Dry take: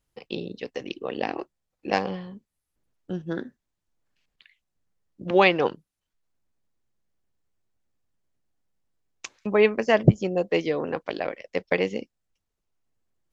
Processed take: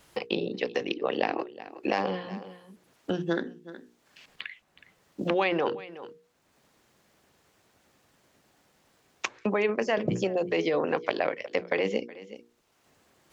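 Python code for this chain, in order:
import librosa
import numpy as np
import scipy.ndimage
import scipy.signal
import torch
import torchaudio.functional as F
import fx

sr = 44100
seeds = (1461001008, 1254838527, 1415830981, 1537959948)

p1 = fx.highpass(x, sr, hz=320.0, slope=6)
p2 = fx.high_shelf(p1, sr, hz=5500.0, db=-6.5)
p3 = fx.hum_notches(p2, sr, base_hz=60, count=8)
p4 = fx.over_compress(p3, sr, threshold_db=-28.0, ratio=-0.5)
p5 = p3 + (p4 * 10.0 ** (3.0 / 20.0))
p6 = fx.wow_flutter(p5, sr, seeds[0], rate_hz=2.1, depth_cents=30.0)
p7 = p6 + fx.echo_single(p6, sr, ms=369, db=-22.5, dry=0)
p8 = fx.band_squash(p7, sr, depth_pct=70)
y = p8 * 10.0 ** (-5.5 / 20.0)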